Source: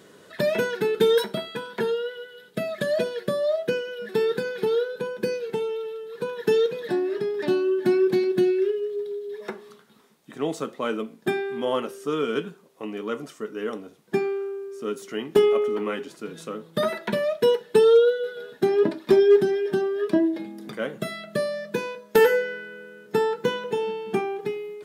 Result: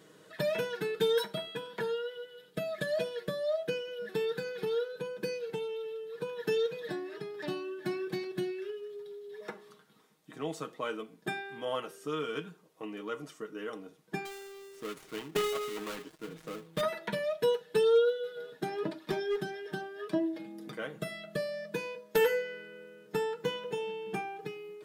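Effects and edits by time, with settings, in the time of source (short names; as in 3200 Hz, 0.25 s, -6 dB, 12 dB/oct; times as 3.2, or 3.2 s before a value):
14.25–16.81 switching dead time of 0.22 ms
whole clip: dynamic EQ 320 Hz, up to -6 dB, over -33 dBFS, Q 0.8; comb 6.4 ms, depth 53%; gain -7.5 dB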